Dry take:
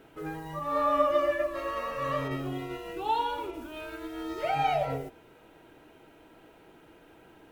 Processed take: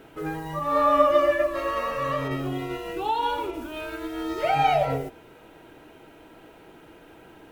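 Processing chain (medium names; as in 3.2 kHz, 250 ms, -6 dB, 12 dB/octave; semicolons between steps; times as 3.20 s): 1.93–3.23 s: compression 2:1, threshold -31 dBFS, peak gain reduction 4.5 dB; trim +6 dB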